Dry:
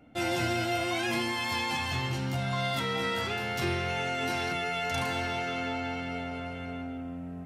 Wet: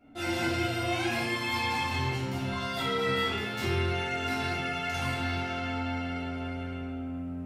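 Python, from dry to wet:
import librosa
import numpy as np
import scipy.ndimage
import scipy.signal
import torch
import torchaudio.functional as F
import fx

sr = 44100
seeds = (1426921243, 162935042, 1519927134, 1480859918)

y = fx.room_shoebox(x, sr, seeds[0], volume_m3=230.0, walls='mixed', distance_m=2.9)
y = y * librosa.db_to_amplitude(-9.0)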